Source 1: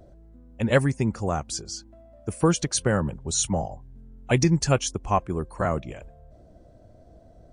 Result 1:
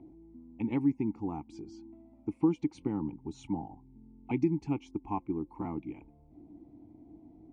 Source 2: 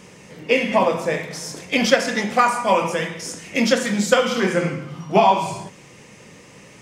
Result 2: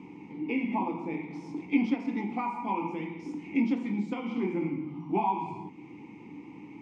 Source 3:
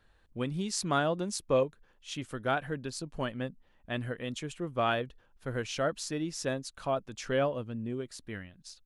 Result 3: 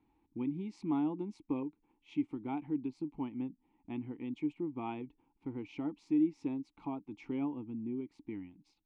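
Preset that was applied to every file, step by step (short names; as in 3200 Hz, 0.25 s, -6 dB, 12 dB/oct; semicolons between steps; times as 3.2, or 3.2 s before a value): tilt -2.5 dB/oct; compressor 1.5:1, threshold -37 dBFS; vowel filter u; gain +8.5 dB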